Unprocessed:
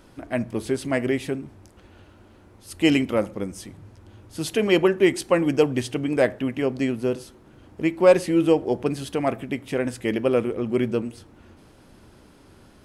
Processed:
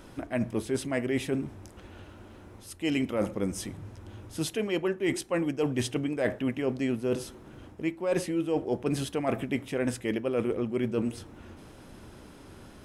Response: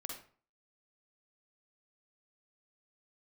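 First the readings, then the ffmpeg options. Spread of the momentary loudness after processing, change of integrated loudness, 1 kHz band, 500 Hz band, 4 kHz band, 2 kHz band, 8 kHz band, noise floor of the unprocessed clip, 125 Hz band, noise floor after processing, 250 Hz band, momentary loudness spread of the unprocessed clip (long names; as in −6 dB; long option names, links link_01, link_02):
20 LU, −7.5 dB, −8.0 dB, −8.5 dB, −6.5 dB, −7.0 dB, −2.0 dB, −52 dBFS, −4.0 dB, −50 dBFS, −6.0 dB, 13 LU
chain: -af "bandreject=frequency=4500:width=15,areverse,acompressor=threshold=-27dB:ratio=16,areverse,volume=2.5dB"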